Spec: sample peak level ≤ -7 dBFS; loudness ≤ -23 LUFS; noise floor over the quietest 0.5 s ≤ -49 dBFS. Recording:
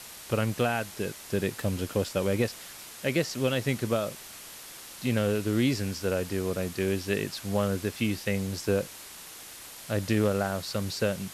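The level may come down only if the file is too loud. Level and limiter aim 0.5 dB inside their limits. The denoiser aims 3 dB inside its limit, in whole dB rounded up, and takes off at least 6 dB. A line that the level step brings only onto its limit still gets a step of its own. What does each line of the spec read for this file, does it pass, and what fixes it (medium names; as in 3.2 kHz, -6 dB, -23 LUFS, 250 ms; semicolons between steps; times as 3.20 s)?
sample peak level -13.5 dBFS: pass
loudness -29.5 LUFS: pass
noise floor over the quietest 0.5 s -45 dBFS: fail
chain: noise reduction 7 dB, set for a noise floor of -45 dBFS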